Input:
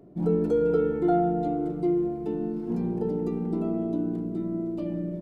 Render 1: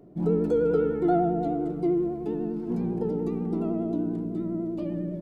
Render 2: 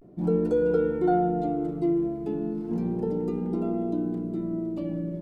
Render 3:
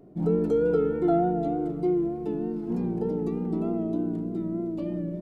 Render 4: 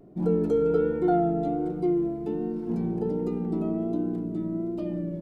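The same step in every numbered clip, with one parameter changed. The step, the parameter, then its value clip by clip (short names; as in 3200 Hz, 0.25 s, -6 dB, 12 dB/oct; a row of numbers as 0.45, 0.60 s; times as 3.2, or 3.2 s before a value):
vibrato, rate: 10, 0.34, 3.3, 1.3 Hz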